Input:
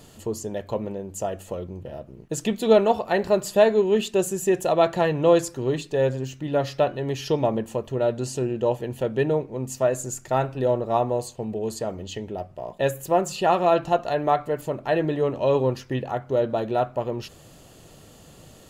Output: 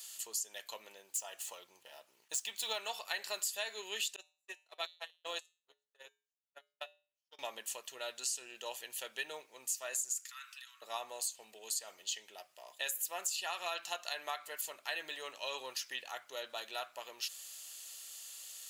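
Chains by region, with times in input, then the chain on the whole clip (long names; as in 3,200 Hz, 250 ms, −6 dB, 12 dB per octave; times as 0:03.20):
0:01.09–0:02.79: running median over 3 samples + parametric band 900 Hz +7 dB 0.43 octaves
0:04.16–0:07.39: delay with a band-pass on its return 116 ms, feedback 76%, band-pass 430 Hz, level −10 dB + noise gate −18 dBFS, range −59 dB + tuned comb filter 84 Hz, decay 0.37 s, harmonics odd, mix 50%
0:10.12–0:10.82: downward compressor 5 to 1, threshold −27 dBFS + Butterworth high-pass 1,100 Hz 72 dB per octave
whole clip: Bessel high-pass filter 2,800 Hz, order 2; high-shelf EQ 4,100 Hz +8.5 dB; downward compressor 6 to 1, threshold −35 dBFS; level +1 dB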